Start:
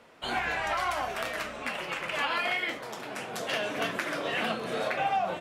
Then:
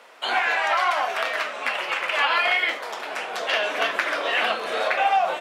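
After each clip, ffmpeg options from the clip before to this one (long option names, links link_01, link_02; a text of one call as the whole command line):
ffmpeg -i in.wav -filter_complex "[0:a]acrossover=split=5100[link_01][link_02];[link_02]acompressor=threshold=-58dB:ratio=6[link_03];[link_01][link_03]amix=inputs=2:normalize=0,highpass=580,volume=9dB" out.wav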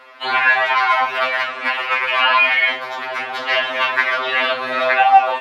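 ffmpeg -i in.wav -af "equalizer=frequency=125:width_type=o:width=1:gain=10,equalizer=frequency=250:width_type=o:width=1:gain=7,equalizer=frequency=1000:width_type=o:width=1:gain=7,equalizer=frequency=2000:width_type=o:width=1:gain=7,equalizer=frequency=4000:width_type=o:width=1:gain=6,equalizer=frequency=8000:width_type=o:width=1:gain=-9,afftfilt=real='re*2.45*eq(mod(b,6),0)':imag='im*2.45*eq(mod(b,6),0)':win_size=2048:overlap=0.75,volume=1dB" out.wav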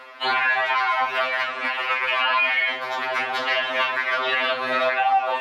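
ffmpeg -i in.wav -af "alimiter=limit=-12dB:level=0:latency=1:release=275,areverse,acompressor=mode=upward:threshold=-29dB:ratio=2.5,areverse" out.wav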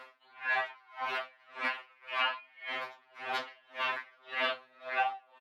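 ffmpeg -i in.wav -af "aecho=1:1:860:0.188,aeval=exprs='val(0)*pow(10,-34*(0.5-0.5*cos(2*PI*1.8*n/s))/20)':channel_layout=same,volume=-7dB" out.wav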